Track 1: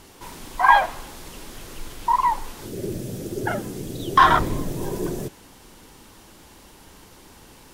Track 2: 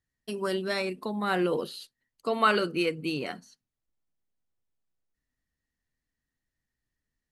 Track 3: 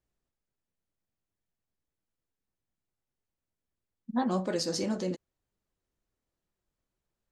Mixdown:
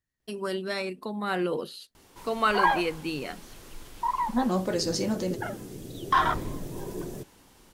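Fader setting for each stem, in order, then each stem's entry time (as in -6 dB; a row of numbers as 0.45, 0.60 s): -8.5, -1.5, +3.0 dB; 1.95, 0.00, 0.20 s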